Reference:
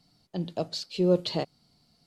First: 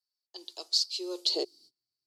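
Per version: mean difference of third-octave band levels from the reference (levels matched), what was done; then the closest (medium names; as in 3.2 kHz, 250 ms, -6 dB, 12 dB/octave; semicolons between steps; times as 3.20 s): 11.0 dB: gate -58 dBFS, range -30 dB; FFT filter 120 Hz 0 dB, 180 Hz -25 dB, 360 Hz +10 dB, 590 Hz -9 dB, 1.7 kHz -11 dB, 2.7 kHz -2 dB, 4.8 kHz +15 dB, 9.5 kHz +11 dB; high-pass sweep 1 kHz -> 120 Hz, 1.14–1.87 s; trim -4.5 dB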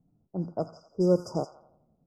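7.0 dB: FFT band-reject 1.5–4.8 kHz; feedback echo behind a high-pass 86 ms, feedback 60%, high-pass 1.7 kHz, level -3.5 dB; level-controlled noise filter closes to 440 Hz, open at -23 dBFS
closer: second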